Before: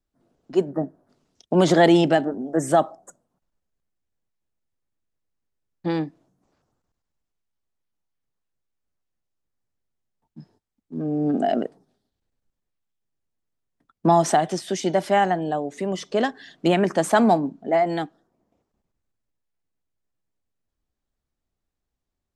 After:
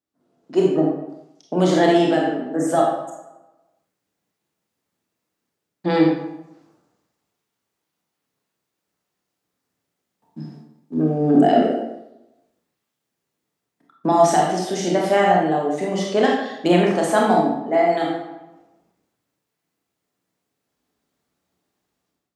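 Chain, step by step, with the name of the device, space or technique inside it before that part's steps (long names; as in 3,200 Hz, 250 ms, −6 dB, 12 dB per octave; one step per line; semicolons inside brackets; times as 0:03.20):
far laptop microphone (convolution reverb RT60 0.90 s, pre-delay 25 ms, DRR −2.5 dB; high-pass filter 170 Hz 12 dB per octave; automatic gain control gain up to 12 dB)
level −3.5 dB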